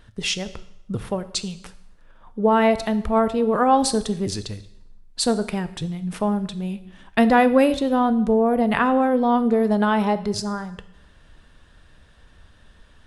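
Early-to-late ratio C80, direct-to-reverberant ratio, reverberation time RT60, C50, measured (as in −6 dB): 17.5 dB, 12.0 dB, 0.80 s, 15.0 dB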